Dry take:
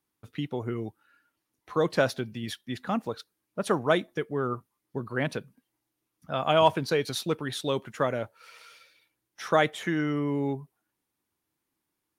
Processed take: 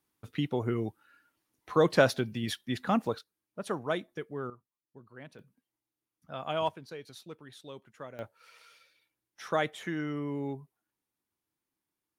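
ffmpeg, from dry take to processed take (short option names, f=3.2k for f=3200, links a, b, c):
-af "asetnsamples=n=441:p=0,asendcmd='3.19 volume volume -8dB;4.5 volume volume -19.5dB;5.39 volume volume -10dB;6.69 volume volume -17.5dB;8.19 volume volume -6.5dB',volume=1.5dB"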